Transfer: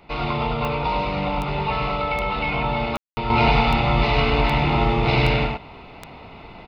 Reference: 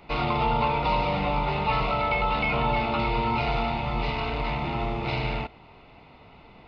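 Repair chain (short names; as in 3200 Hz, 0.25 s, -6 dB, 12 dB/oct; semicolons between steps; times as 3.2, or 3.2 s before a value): de-click; room tone fill 2.97–3.17; inverse comb 0.103 s -3.5 dB; gain correction -8 dB, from 3.3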